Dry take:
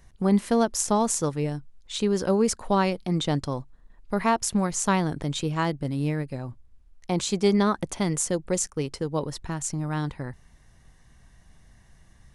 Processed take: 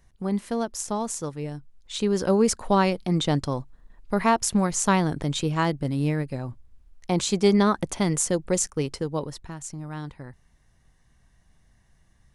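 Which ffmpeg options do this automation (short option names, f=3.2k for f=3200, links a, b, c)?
-af "volume=2dB,afade=t=in:st=1.4:d=0.99:silence=0.421697,afade=t=out:st=8.87:d=0.65:silence=0.375837"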